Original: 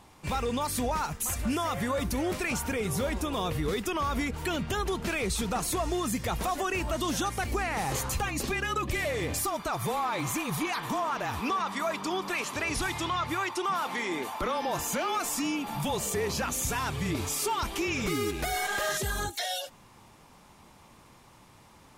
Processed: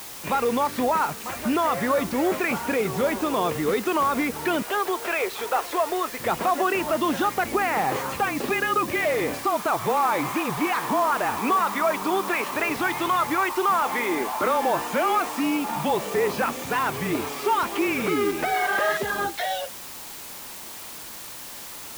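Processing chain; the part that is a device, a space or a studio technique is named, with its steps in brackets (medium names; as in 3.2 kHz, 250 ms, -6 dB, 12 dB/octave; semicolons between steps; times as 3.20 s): 4.62–6.20 s: high-pass 400 Hz 24 dB/octave; wax cylinder (band-pass 250–2200 Hz; wow and flutter; white noise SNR 14 dB); trim +8.5 dB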